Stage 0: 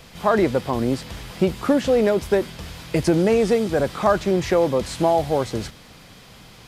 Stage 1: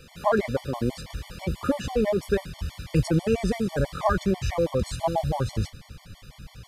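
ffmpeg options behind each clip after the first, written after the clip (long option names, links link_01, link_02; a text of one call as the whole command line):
ffmpeg -i in.wav -af "asubboost=boost=5:cutoff=140,afftfilt=real='re*gt(sin(2*PI*6.1*pts/sr)*(1-2*mod(floor(b*sr/1024/590),2)),0)':imag='im*gt(sin(2*PI*6.1*pts/sr)*(1-2*mod(floor(b*sr/1024/590),2)),0)':win_size=1024:overlap=0.75,volume=-2dB" out.wav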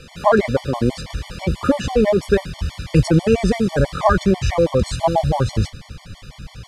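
ffmpeg -i in.wav -af "lowpass=9100,volume=8dB" out.wav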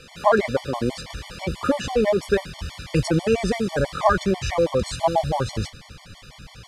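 ffmpeg -i in.wav -af "lowshelf=frequency=280:gain=-8,volume=-1.5dB" out.wav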